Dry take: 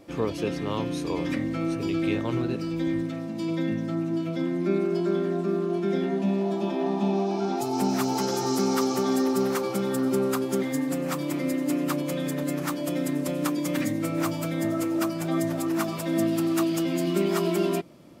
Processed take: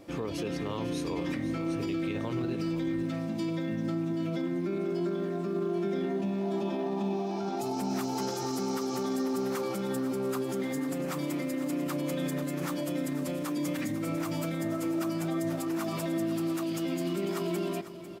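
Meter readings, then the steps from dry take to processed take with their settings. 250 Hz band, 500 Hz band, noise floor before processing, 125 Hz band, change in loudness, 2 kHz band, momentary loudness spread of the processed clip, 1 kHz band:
-5.0 dB, -5.5 dB, -32 dBFS, -4.5 dB, -5.5 dB, -5.0 dB, 2 LU, -6.0 dB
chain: limiter -24.5 dBFS, peak gain reduction 11.5 dB; short-mantissa float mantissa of 6-bit; on a send: echo 0.498 s -13 dB

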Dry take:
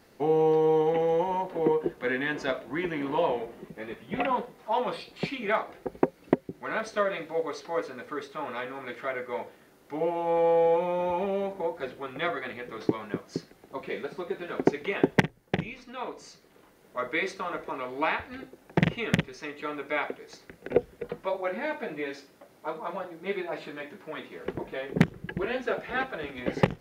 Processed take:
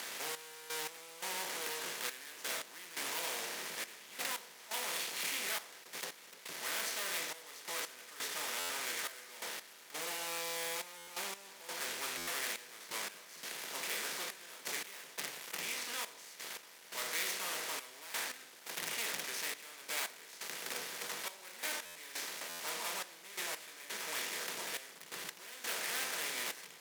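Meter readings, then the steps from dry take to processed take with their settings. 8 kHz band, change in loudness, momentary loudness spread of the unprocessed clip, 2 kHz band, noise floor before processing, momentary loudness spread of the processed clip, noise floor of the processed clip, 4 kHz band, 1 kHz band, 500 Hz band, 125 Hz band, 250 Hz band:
n/a, -9.5 dB, 14 LU, -6.0 dB, -58 dBFS, 8 LU, -56 dBFS, +3.5 dB, -13.5 dB, -21.0 dB, -30.0 dB, -24.5 dB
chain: per-bin compression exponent 0.4; HPF 110 Hz 12 dB/oct; de-hum 146.2 Hz, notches 35; fuzz box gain 26 dB, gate -35 dBFS; limiter -15.5 dBFS, peak gain reduction 4.5 dB; step gate "xx..x..xxx" 86 bpm -12 dB; differentiator; stuck buffer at 8.59/10.97/12.17/21.85/22.49, samples 512; gain -5 dB

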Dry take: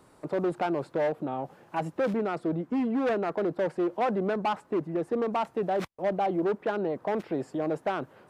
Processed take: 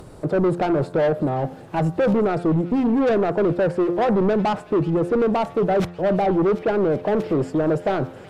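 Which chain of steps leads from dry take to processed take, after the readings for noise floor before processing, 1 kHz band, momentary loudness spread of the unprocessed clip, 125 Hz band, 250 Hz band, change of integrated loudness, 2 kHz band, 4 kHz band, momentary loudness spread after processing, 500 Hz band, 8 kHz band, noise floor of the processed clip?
-59 dBFS, +6.0 dB, 5 LU, +14.0 dB, +9.5 dB, +8.5 dB, +6.0 dB, +6.5 dB, 4 LU, +8.5 dB, n/a, -41 dBFS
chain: graphic EQ 250/1000/2000 Hz -6/-7/-5 dB; in parallel at -4 dB: hard clip -36 dBFS, distortion -7 dB; on the sum: upward compressor, threshold -51 dBFS; tilt -2 dB/oct; de-hum 87.33 Hz, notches 22; on a send: thin delay 0.371 s, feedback 78%, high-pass 2200 Hz, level -14 dB; on the sum: sine folder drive 4 dB, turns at -17.5 dBFS; gain +2.5 dB

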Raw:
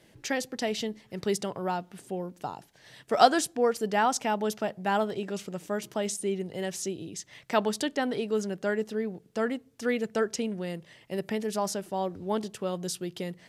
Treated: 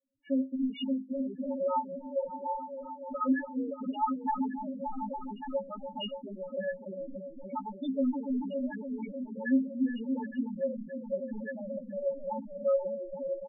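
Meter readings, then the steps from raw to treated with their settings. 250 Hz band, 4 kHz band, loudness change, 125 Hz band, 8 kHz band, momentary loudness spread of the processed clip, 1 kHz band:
+1.0 dB, -10.5 dB, -4.0 dB, under -10 dB, under -40 dB, 9 LU, -6.0 dB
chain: low-pass opened by the level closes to 930 Hz, open at -23 dBFS; sample leveller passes 5; limiter -12.5 dBFS, peak gain reduction 8.5 dB; downsampling 8000 Hz; metallic resonator 260 Hz, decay 0.26 s, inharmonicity 0.03; repeats that get brighter 0.286 s, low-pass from 400 Hz, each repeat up 1 oct, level -3 dB; loudest bins only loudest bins 4; noise-modulated level, depth 55%; gain +3 dB

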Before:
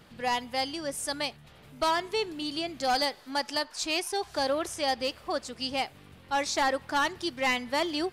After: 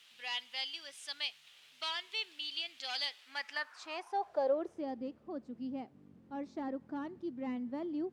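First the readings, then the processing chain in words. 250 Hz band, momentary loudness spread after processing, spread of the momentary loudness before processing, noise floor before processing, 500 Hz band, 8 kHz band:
-5.0 dB, 9 LU, 6 LU, -54 dBFS, -8.5 dB, -19.5 dB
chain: added noise white -53 dBFS; band-pass sweep 3100 Hz -> 240 Hz, 3.15–5.03

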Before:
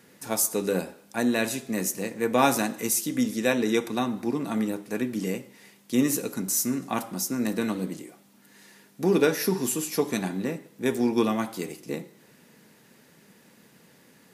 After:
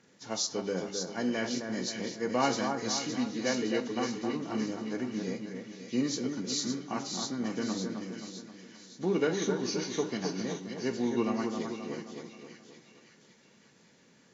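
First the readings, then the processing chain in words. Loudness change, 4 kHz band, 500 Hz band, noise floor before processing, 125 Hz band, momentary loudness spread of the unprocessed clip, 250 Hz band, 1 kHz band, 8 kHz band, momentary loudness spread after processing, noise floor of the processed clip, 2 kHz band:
-6.0 dB, 0.0 dB, -5.5 dB, -58 dBFS, -5.5 dB, 10 LU, -5.5 dB, -5.5 dB, -7.5 dB, 13 LU, -62 dBFS, -6.0 dB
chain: nonlinear frequency compression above 1800 Hz 1.5:1; split-band echo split 1800 Hz, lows 0.264 s, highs 0.564 s, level -5.5 dB; gain -7 dB

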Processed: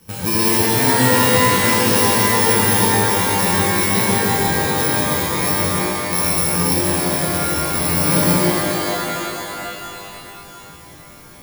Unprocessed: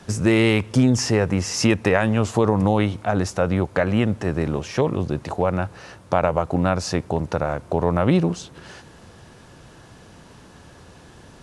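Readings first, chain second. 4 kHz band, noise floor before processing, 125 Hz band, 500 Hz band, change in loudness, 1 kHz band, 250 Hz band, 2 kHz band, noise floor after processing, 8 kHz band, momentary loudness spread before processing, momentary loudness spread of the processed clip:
+10.5 dB, -47 dBFS, +0.5 dB, +1.5 dB, +6.0 dB, +8.0 dB, +1.0 dB, +8.5 dB, -41 dBFS, +14.5 dB, 7 LU, 11 LU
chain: FFT order left unsorted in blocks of 64 samples; shimmer reverb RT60 3.1 s, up +12 st, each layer -2 dB, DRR -7.5 dB; gain -6 dB

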